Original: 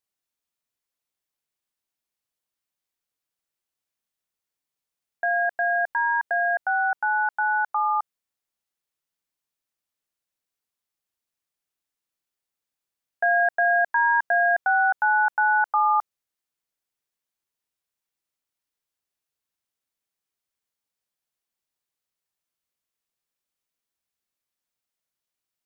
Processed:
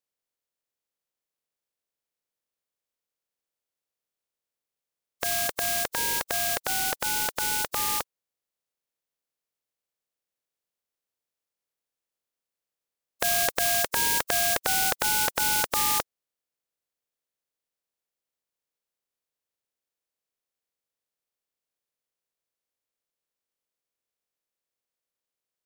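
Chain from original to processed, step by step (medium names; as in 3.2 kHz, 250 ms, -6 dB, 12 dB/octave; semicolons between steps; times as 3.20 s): spectral contrast reduction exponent 0.18; peaking EQ 500 Hz +7.5 dB 0.69 oct; trim -3.5 dB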